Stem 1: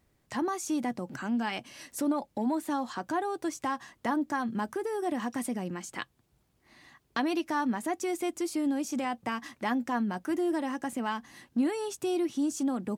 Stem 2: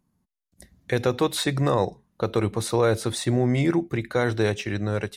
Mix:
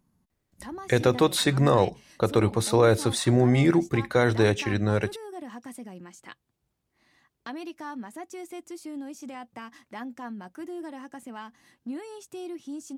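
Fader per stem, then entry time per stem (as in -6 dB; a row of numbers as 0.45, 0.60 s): -8.0, +1.5 dB; 0.30, 0.00 s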